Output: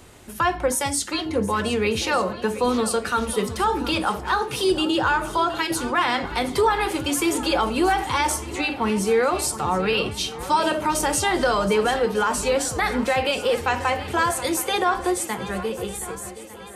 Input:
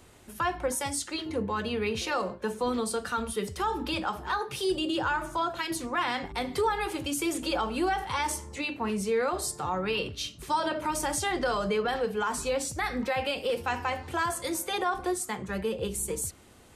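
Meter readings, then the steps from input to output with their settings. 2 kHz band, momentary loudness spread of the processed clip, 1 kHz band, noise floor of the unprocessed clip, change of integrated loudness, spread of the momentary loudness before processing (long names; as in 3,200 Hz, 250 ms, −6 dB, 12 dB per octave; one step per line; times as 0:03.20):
+7.5 dB, 5 LU, +7.5 dB, −48 dBFS, +7.5 dB, 4 LU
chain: fade-out on the ending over 1.83 s
on a send: feedback echo with a long and a short gap by turns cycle 1,201 ms, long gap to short 1.5 to 1, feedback 44%, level −15 dB
on the sum: level +7.5 dB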